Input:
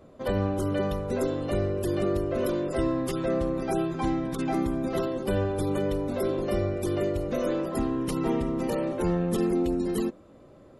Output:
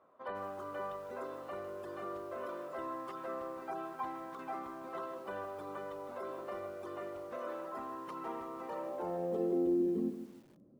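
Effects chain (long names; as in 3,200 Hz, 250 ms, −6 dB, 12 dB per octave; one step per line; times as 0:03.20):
band-pass filter sweep 1,100 Hz → 210 Hz, 0:08.68–0:10.26
feedback echo at a low word length 155 ms, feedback 35%, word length 9 bits, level −10 dB
level −2.5 dB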